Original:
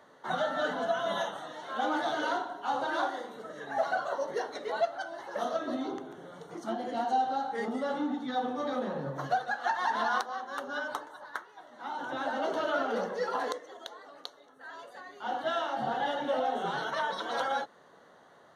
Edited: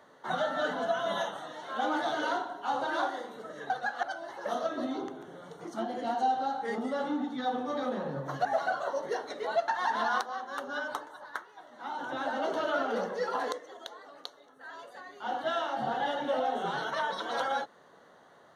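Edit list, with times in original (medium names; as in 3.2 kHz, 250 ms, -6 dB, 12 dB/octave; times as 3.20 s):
3.70–4.93 s: swap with 9.35–9.68 s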